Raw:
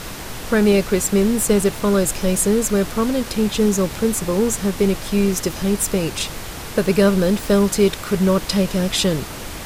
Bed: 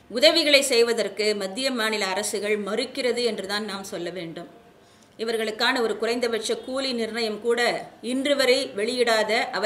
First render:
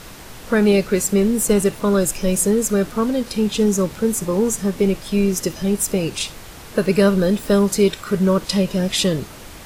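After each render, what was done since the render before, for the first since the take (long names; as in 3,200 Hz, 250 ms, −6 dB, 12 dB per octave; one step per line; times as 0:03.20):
noise reduction from a noise print 7 dB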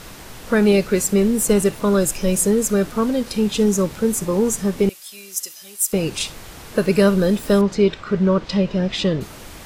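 0:04.89–0:05.93: first difference
0:07.61–0:09.21: high-frequency loss of the air 160 metres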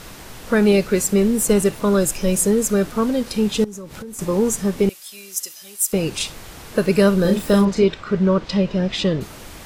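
0:03.64–0:04.19: downward compressor 12 to 1, threshold −30 dBFS
0:07.21–0:07.84: double-tracking delay 36 ms −4.5 dB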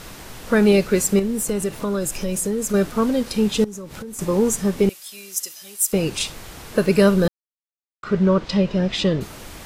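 0:01.19–0:02.74: downward compressor 2.5 to 1, threshold −22 dBFS
0:07.28–0:08.03: silence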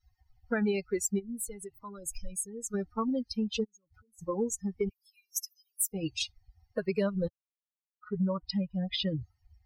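spectral dynamics exaggerated over time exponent 3
downward compressor 3 to 1, threshold −29 dBFS, peak gain reduction 12 dB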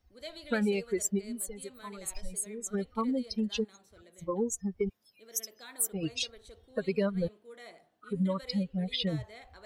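mix in bed −27.5 dB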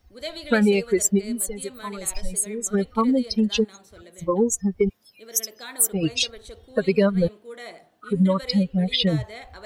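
level +10.5 dB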